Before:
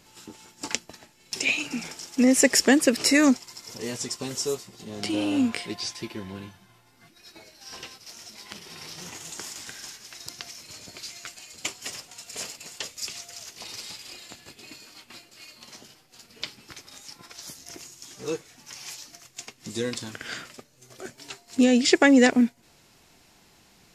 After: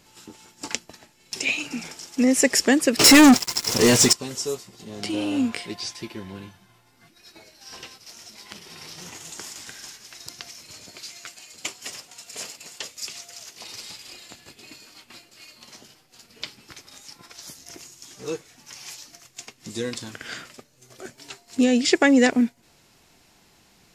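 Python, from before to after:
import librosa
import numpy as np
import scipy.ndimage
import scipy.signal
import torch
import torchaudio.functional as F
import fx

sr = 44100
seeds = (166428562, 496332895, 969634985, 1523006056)

y = fx.leveller(x, sr, passes=5, at=(2.99, 4.13))
y = fx.low_shelf(y, sr, hz=82.0, db=-10.5, at=(10.86, 13.74))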